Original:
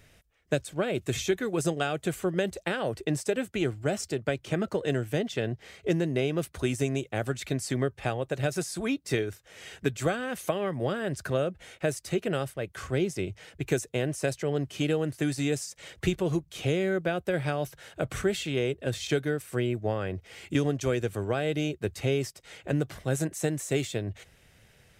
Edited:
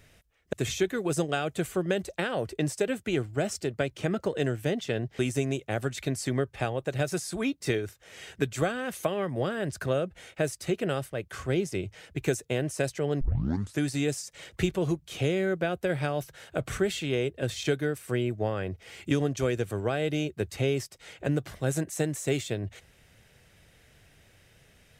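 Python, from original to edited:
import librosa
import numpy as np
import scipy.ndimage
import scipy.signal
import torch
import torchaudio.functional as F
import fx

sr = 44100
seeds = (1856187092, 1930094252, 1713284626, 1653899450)

y = fx.edit(x, sr, fx.cut(start_s=0.53, length_s=0.48),
    fx.cut(start_s=5.67, length_s=0.96),
    fx.tape_start(start_s=14.65, length_s=0.59), tone=tone)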